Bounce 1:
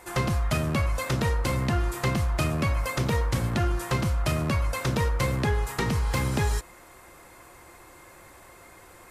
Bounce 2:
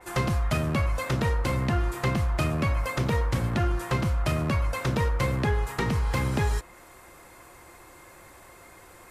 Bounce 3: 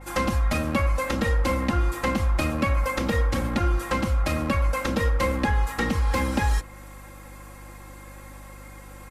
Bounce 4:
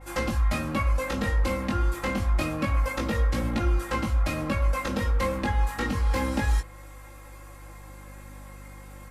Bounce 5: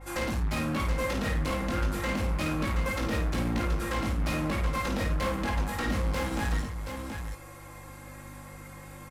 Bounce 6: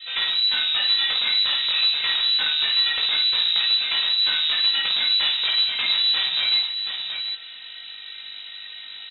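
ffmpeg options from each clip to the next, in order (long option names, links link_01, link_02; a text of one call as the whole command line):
ffmpeg -i in.wav -af "adynamicequalizer=threshold=0.00398:dfrequency=3700:dqfactor=0.7:tfrequency=3700:tqfactor=0.7:attack=5:release=100:ratio=0.375:range=2.5:mode=cutabove:tftype=highshelf" out.wav
ffmpeg -i in.wav -af "aecho=1:1:3.7:0.99,aeval=exprs='val(0)+0.00708*(sin(2*PI*50*n/s)+sin(2*PI*2*50*n/s)/2+sin(2*PI*3*50*n/s)/3+sin(2*PI*4*50*n/s)/4+sin(2*PI*5*50*n/s)/5)':channel_layout=same" out.wav
ffmpeg -i in.wav -af "flanger=delay=17.5:depth=3.2:speed=0.28" out.wav
ffmpeg -i in.wav -filter_complex "[0:a]volume=28dB,asoftclip=hard,volume=-28dB,asplit=2[link_01][link_02];[link_02]aecho=0:1:52|727:0.501|0.473[link_03];[link_01][link_03]amix=inputs=2:normalize=0" out.wav
ffmpeg -i in.wav -af "lowpass=frequency=3400:width_type=q:width=0.5098,lowpass=frequency=3400:width_type=q:width=0.6013,lowpass=frequency=3400:width_type=q:width=0.9,lowpass=frequency=3400:width_type=q:width=2.563,afreqshift=-4000,volume=7dB" out.wav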